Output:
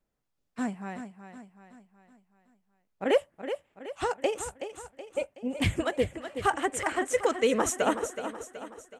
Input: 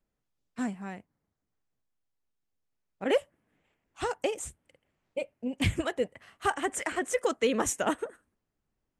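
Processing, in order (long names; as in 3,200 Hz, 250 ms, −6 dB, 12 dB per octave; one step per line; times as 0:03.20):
parametric band 760 Hz +3 dB 1.9 octaves
repeating echo 374 ms, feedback 48%, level −10 dB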